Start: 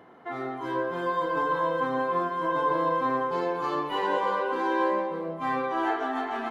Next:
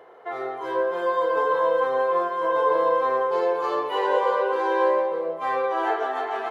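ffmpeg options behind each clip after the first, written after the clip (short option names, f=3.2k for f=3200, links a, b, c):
-af "lowshelf=f=330:t=q:w=3:g=-10.5,volume=1.5dB"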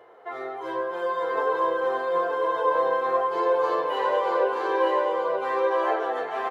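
-filter_complex "[0:a]flanger=delay=8.5:depth=2.5:regen=40:speed=1.2:shape=sinusoidal,asplit=2[a][b];[b]aecho=0:1:927:0.668[c];[a][c]amix=inputs=2:normalize=0,volume=1.5dB"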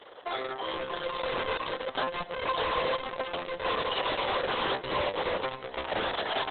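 -af "lowpass=f=3.4k:t=q:w=14,asoftclip=type=hard:threshold=-29.5dB,volume=2dB" -ar 48000 -c:a libopus -b:a 6k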